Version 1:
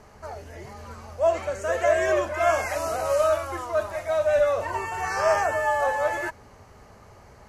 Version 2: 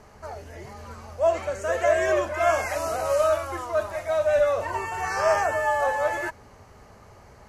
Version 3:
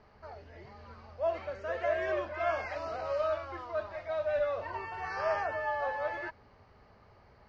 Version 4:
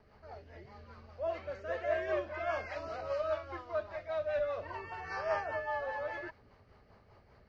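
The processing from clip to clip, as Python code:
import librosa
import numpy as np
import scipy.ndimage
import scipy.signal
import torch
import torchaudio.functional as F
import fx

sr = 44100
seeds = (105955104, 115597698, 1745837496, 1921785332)

y1 = x
y2 = scipy.signal.sosfilt(scipy.signal.cheby1(4, 1.0, 4800.0, 'lowpass', fs=sr, output='sos'), y1)
y2 = y2 * 10.0 ** (-9.0 / 20.0)
y3 = fx.rotary(y2, sr, hz=5.0)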